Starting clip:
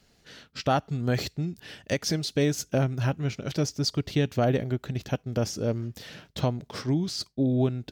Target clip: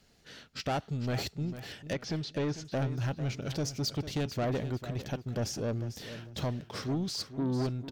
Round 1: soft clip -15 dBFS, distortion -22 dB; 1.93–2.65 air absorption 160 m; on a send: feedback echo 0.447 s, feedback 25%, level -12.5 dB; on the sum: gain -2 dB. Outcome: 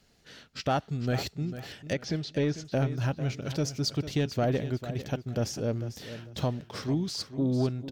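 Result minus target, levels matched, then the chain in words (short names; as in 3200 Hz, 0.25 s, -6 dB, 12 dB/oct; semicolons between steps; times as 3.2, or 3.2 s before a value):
soft clip: distortion -12 dB
soft clip -25 dBFS, distortion -10 dB; 1.93–2.65 air absorption 160 m; on a send: feedback echo 0.447 s, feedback 25%, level -12.5 dB; on the sum: gain -2 dB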